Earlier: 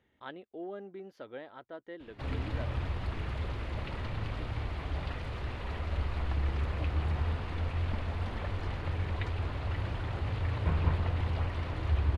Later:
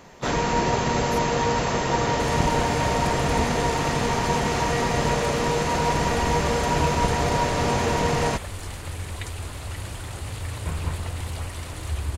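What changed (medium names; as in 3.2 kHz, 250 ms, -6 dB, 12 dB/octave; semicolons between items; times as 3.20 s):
speech +6.5 dB; first sound: unmuted; master: remove distance through air 320 m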